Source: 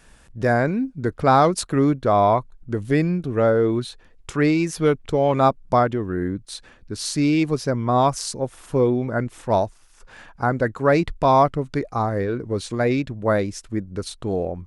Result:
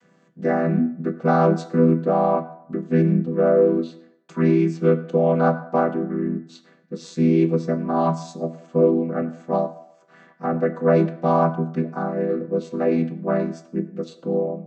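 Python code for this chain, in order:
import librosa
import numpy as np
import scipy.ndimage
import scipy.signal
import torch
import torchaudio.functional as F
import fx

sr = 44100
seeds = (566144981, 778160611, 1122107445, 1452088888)

y = fx.chord_vocoder(x, sr, chord='minor triad', root=52)
y = fx.rev_fdn(y, sr, rt60_s=0.76, lf_ratio=0.75, hf_ratio=0.65, size_ms=61.0, drr_db=6.5)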